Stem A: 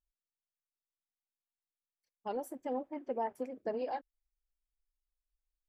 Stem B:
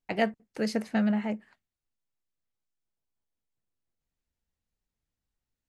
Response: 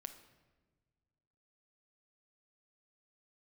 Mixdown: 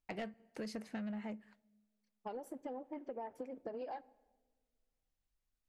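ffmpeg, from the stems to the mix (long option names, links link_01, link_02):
-filter_complex "[0:a]highshelf=frequency=8500:gain=-10,acompressor=threshold=-36dB:ratio=6,volume=-1.5dB,asplit=2[link_01][link_02];[link_02]volume=-8.5dB[link_03];[1:a]volume=-7dB,asplit=2[link_04][link_05];[link_05]volume=-16.5dB[link_06];[2:a]atrim=start_sample=2205[link_07];[link_03][link_06]amix=inputs=2:normalize=0[link_08];[link_08][link_07]afir=irnorm=-1:irlink=0[link_09];[link_01][link_04][link_09]amix=inputs=3:normalize=0,asoftclip=type=tanh:threshold=-28dB,acompressor=threshold=-40dB:ratio=6"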